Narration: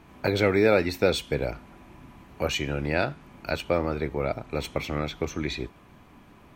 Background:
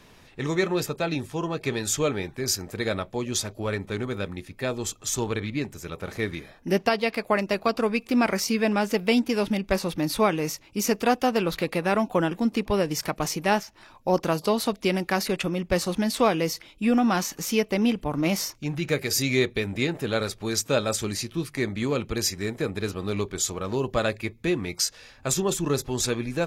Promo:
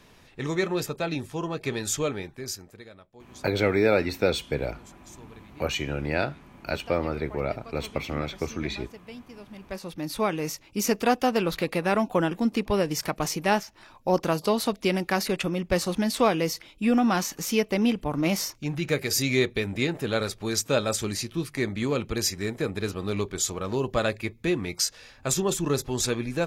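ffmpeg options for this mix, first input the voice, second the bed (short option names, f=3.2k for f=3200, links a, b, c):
-filter_complex "[0:a]adelay=3200,volume=-1dB[a];[1:a]volume=19dB,afade=t=out:st=1.94:d=0.95:silence=0.105925,afade=t=in:st=9.49:d=1.21:silence=0.0891251[b];[a][b]amix=inputs=2:normalize=0"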